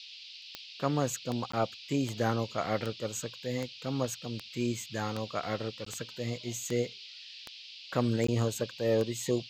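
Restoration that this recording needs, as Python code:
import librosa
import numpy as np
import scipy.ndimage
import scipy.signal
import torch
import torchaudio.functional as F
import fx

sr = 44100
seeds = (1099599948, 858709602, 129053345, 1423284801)

y = fx.fix_declick_ar(x, sr, threshold=10.0)
y = fx.fix_interpolate(y, sr, at_s=(1.52, 5.85, 8.27), length_ms=14.0)
y = fx.noise_reduce(y, sr, print_start_s=7.42, print_end_s=7.92, reduce_db=29.0)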